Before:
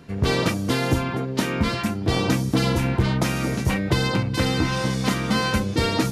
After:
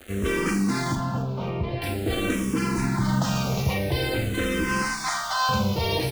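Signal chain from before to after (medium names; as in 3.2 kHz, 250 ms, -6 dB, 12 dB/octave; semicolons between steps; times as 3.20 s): CVSD coder 64 kbps; 4.82–5.49 s: steep high-pass 620 Hz 72 dB/octave; peak limiter -17 dBFS, peak gain reduction 8 dB; bit crusher 7-bit; 0.95–1.82 s: tape spacing loss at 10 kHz 39 dB; frequency-shifting echo 271 ms, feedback 30%, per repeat -45 Hz, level -15 dB; Schroeder reverb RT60 0.36 s, combs from 29 ms, DRR 6 dB; barber-pole phaser -0.47 Hz; trim +3.5 dB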